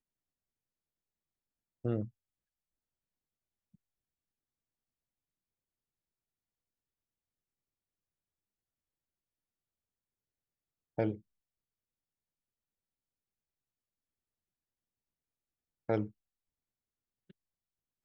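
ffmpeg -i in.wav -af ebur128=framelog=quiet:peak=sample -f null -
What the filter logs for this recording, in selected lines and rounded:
Integrated loudness:
  I:         -37.6 LUFS
  Threshold: -48.5 LUFS
Loudness range:
  LRA:         1.2 LU
  Threshold: -64.9 LUFS
  LRA low:   -45.3 LUFS
  LRA high:  -44.1 LUFS
Sample peak:
  Peak:      -18.5 dBFS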